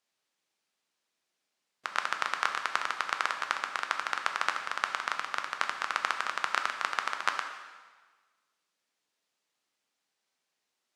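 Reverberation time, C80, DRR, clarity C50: 1.4 s, 8.5 dB, 4.5 dB, 7.0 dB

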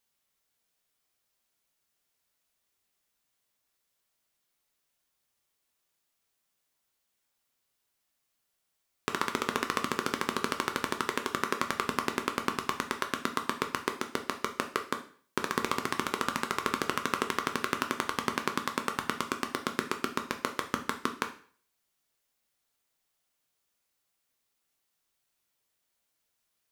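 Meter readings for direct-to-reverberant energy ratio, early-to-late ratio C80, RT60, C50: 5.0 dB, 16.0 dB, 0.45 s, 12.0 dB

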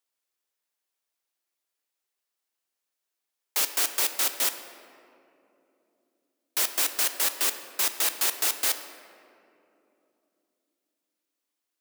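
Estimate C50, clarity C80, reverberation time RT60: 9.5 dB, 10.5 dB, 2.9 s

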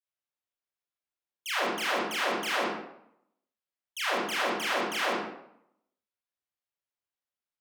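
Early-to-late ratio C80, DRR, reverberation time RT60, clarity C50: 3.5 dB, −10.5 dB, 0.75 s, −2.0 dB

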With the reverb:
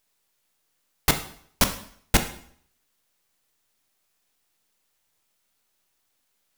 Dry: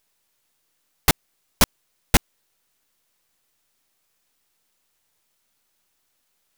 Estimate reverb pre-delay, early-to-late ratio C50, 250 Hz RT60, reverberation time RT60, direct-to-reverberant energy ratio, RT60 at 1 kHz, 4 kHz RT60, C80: 6 ms, 11.5 dB, 0.65 s, 0.60 s, 7.0 dB, 0.60 s, 0.55 s, 14.5 dB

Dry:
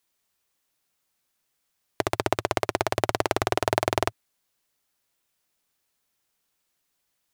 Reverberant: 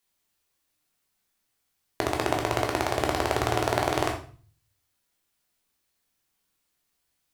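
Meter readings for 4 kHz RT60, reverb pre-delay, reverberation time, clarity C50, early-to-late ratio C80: 0.40 s, 11 ms, 0.40 s, 8.0 dB, 12.5 dB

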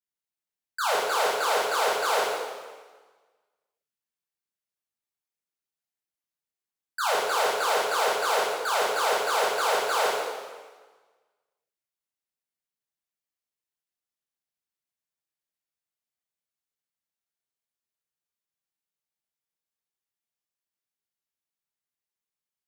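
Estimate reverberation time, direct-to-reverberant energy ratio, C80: 1.4 s, −6.0 dB, 1.5 dB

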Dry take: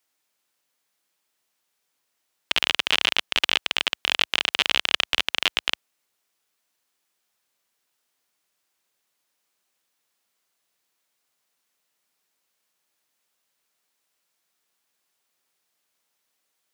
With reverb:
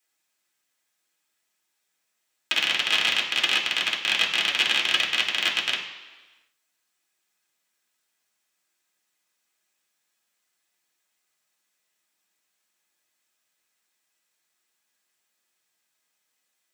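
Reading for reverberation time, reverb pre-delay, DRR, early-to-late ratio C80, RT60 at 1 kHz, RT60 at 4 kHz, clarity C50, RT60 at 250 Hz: 1.3 s, 3 ms, −2.0 dB, 9.0 dB, 1.3 s, 1.2 s, 7.0 dB, 1.2 s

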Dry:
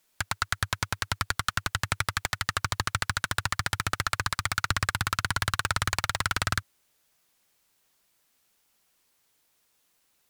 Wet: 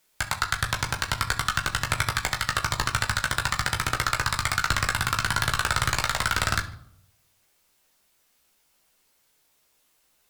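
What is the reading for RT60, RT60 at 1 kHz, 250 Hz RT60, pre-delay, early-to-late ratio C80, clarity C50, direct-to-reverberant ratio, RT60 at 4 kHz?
0.70 s, 0.65 s, 0.80 s, 14 ms, 17.0 dB, 13.0 dB, 2.0 dB, 0.45 s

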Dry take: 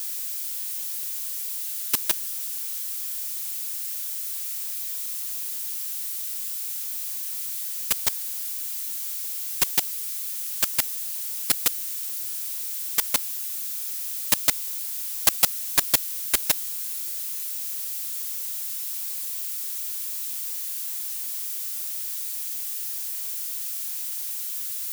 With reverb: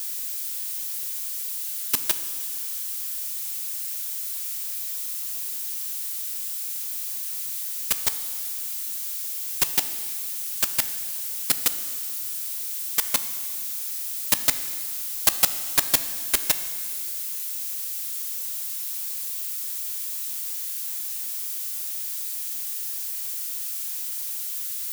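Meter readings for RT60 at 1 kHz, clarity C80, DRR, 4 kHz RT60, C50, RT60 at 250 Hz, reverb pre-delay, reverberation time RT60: 2.0 s, 12.5 dB, 10.0 dB, 1.9 s, 11.5 dB, 2.0 s, 15 ms, 2.0 s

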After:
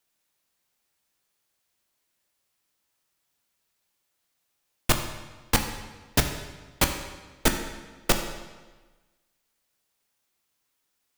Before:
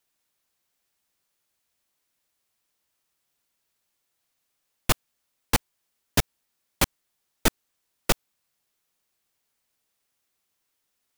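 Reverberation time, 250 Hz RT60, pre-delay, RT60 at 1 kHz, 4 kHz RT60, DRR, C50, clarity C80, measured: 1.3 s, 1.3 s, 15 ms, 1.3 s, 1.1 s, 4.5 dB, 7.5 dB, 8.5 dB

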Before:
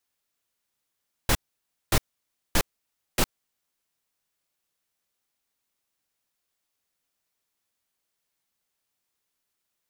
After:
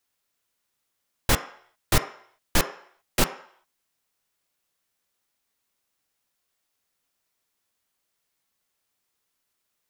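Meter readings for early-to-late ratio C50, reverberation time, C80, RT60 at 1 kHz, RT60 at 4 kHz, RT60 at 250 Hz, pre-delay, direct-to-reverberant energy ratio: 11.5 dB, 0.60 s, 15.0 dB, 0.60 s, 0.60 s, 0.55 s, 8 ms, 7.0 dB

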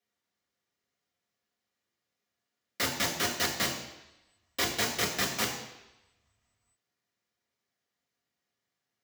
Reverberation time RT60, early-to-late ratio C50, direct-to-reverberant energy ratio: 0.95 s, 6.0 dB, −1.5 dB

